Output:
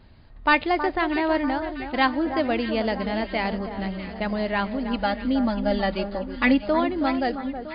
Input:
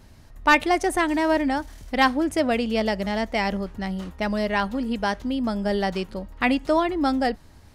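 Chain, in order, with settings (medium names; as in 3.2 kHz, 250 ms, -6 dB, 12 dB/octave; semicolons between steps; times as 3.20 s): 4.93–6.62 s: comb 3.5 ms, depth 90%; echo whose repeats swap between lows and highs 320 ms, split 1.5 kHz, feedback 71%, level -9 dB; trim -1.5 dB; MP3 40 kbps 11.025 kHz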